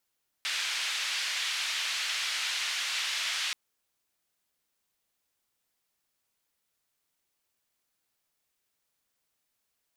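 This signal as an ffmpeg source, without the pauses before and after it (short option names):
-f lavfi -i "anoisesrc=c=white:d=3.08:r=44100:seed=1,highpass=f=2000,lowpass=f=3700,volume=-16.7dB"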